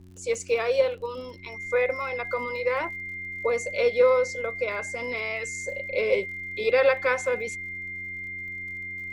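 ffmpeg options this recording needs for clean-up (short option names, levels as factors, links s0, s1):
-af "adeclick=t=4,bandreject=f=91.8:t=h:w=4,bandreject=f=183.6:t=h:w=4,bandreject=f=275.4:t=h:w=4,bandreject=f=367.2:t=h:w=4,bandreject=f=2100:w=30,agate=range=0.0891:threshold=0.0398"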